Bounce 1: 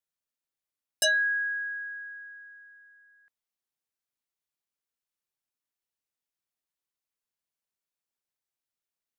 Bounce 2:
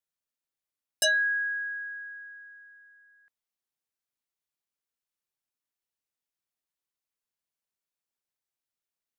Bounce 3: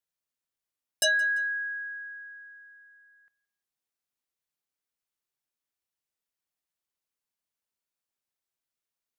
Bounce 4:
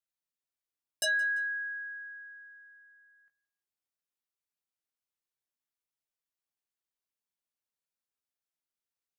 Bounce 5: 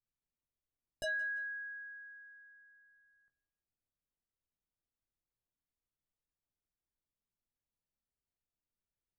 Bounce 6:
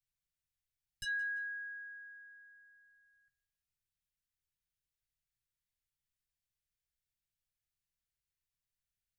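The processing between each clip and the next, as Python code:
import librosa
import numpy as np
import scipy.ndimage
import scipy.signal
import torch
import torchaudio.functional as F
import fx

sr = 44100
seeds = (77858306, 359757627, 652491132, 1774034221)

y1 = x
y2 = fx.echo_feedback(y1, sr, ms=171, feedback_pct=37, wet_db=-23.0)
y3 = fx.doubler(y2, sr, ms=17.0, db=-8.0)
y3 = y3 * 10.0 ** (-6.5 / 20.0)
y4 = fx.tilt_eq(y3, sr, slope=-4.5)
y4 = y4 * 10.0 ** (-4.5 / 20.0)
y5 = scipy.signal.sosfilt(scipy.signal.cheby2(4, 50, [310.0, 830.0], 'bandstop', fs=sr, output='sos'), y4)
y5 = y5 * 10.0 ** (1.5 / 20.0)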